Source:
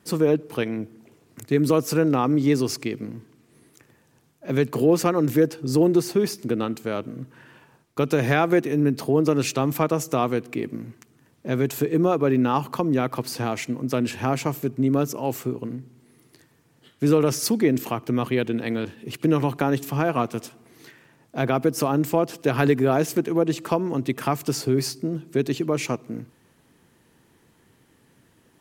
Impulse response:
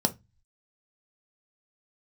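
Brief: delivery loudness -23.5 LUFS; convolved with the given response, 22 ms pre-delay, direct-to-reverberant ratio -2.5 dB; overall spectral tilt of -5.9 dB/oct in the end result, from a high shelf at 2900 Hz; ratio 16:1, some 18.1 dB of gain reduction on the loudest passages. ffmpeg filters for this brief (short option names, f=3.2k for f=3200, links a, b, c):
-filter_complex "[0:a]highshelf=f=2.9k:g=6.5,acompressor=threshold=-32dB:ratio=16,asplit=2[a][b];[1:a]atrim=start_sample=2205,adelay=22[c];[b][c]afir=irnorm=-1:irlink=0,volume=-6.5dB[d];[a][d]amix=inputs=2:normalize=0,volume=5.5dB"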